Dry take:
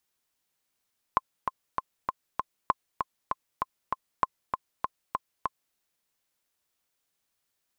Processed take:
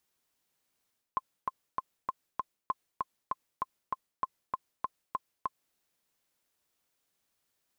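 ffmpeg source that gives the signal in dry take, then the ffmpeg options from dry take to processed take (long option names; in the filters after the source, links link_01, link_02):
-f lavfi -i "aevalsrc='pow(10,(-8.5-5.5*gte(mod(t,5*60/196),60/196))/20)*sin(2*PI*1050*mod(t,60/196))*exp(-6.91*mod(t,60/196)/0.03)':duration=4.59:sample_rate=44100"
-af "equalizer=frequency=280:width=0.39:gain=3,areverse,acompressor=threshold=-31dB:ratio=6,areverse"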